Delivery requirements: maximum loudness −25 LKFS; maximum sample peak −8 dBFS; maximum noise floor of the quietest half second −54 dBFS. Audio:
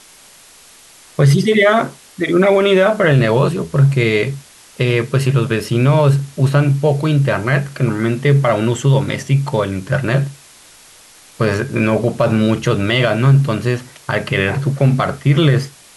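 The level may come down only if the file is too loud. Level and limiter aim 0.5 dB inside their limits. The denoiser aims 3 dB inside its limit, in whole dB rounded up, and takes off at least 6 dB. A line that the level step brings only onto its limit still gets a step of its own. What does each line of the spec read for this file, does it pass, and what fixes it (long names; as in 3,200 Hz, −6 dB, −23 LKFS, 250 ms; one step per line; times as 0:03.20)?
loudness −15.0 LKFS: out of spec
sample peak −3.5 dBFS: out of spec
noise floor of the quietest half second −44 dBFS: out of spec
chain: level −10.5 dB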